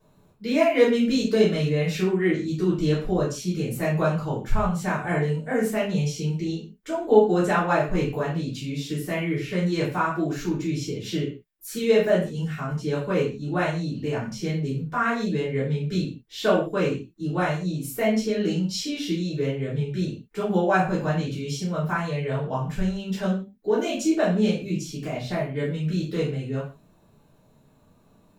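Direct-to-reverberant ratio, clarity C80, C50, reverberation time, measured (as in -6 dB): -11.5 dB, 10.5 dB, 5.0 dB, not exponential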